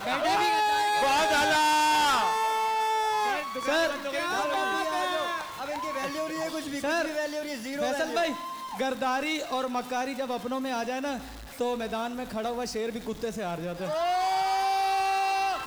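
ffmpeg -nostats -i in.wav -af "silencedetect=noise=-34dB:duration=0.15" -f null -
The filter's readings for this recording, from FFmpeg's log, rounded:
silence_start: 11.21
silence_end: 11.60 | silence_duration: 0.39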